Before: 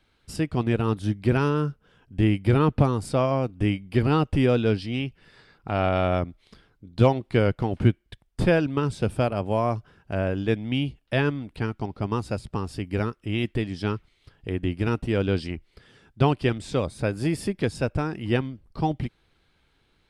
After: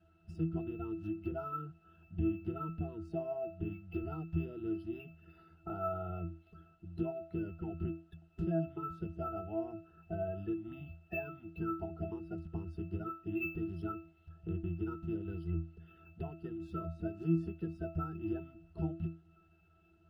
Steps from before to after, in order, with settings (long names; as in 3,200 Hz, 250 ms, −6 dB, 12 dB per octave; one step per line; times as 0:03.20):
spectral magnitudes quantised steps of 30 dB
spectral tilt +2 dB per octave
downward compressor 6 to 1, threshold −35 dBFS, peak gain reduction 18 dB
bit-depth reduction 10 bits, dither triangular
low-shelf EQ 80 Hz +10 dB
resonances in every octave E, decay 0.34 s
linearly interpolated sample-rate reduction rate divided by 3×
level +13.5 dB